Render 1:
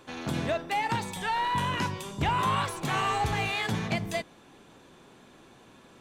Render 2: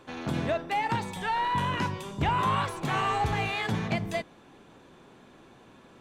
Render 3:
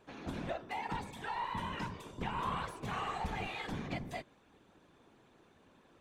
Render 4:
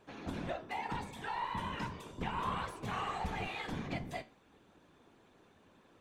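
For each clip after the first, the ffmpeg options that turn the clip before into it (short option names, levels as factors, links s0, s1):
-af "highshelf=f=3800:g=-7.5,volume=1.12"
-af "afftfilt=real='hypot(re,im)*cos(2*PI*random(0))':imag='hypot(re,im)*sin(2*PI*random(1))':win_size=512:overlap=0.75,volume=0.596"
-af "flanger=delay=9.6:depth=5.6:regen=-69:speed=0.35:shape=sinusoidal,volume=1.68"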